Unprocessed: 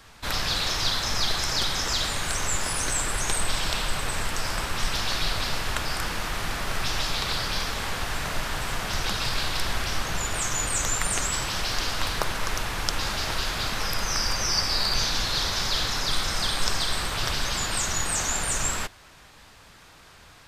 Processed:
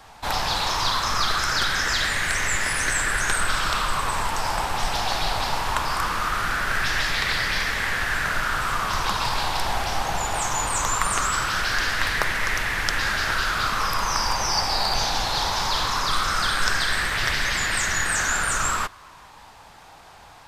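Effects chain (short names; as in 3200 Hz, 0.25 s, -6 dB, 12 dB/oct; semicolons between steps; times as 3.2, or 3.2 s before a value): LFO bell 0.2 Hz 800–1900 Hz +13 dB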